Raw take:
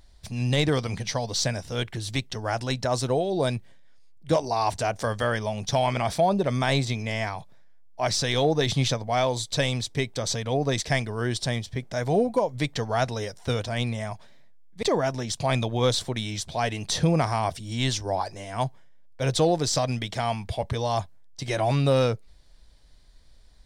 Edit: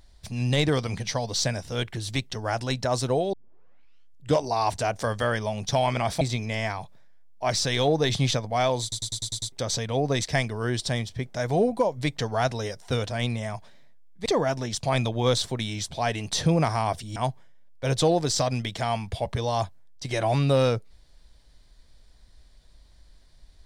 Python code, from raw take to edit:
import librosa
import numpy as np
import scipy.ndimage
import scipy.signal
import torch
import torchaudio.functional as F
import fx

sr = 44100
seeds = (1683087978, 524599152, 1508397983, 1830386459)

y = fx.edit(x, sr, fx.tape_start(start_s=3.33, length_s=1.06),
    fx.cut(start_s=6.21, length_s=0.57),
    fx.stutter_over(start_s=9.39, slice_s=0.1, count=7),
    fx.cut(start_s=17.73, length_s=0.8), tone=tone)